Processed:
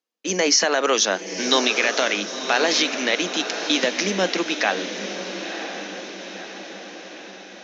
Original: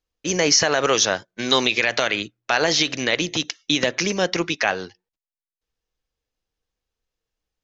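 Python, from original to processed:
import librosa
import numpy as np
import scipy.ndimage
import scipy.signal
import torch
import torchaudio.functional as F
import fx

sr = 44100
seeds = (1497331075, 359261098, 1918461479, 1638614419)

p1 = scipy.signal.sosfilt(scipy.signal.cheby1(6, 1.0, 190.0, 'highpass', fs=sr, output='sos'), x)
y = p1 + fx.echo_diffused(p1, sr, ms=1011, feedback_pct=56, wet_db=-8.5, dry=0)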